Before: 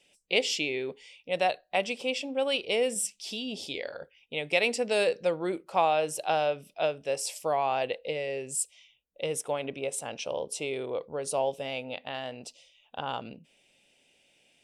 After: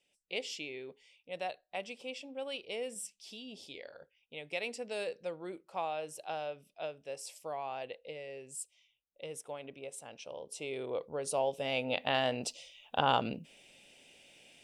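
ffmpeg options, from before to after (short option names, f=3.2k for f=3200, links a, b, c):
-af "volume=6dB,afade=t=in:st=10.42:d=0.52:silence=0.375837,afade=t=in:st=11.52:d=0.6:silence=0.334965"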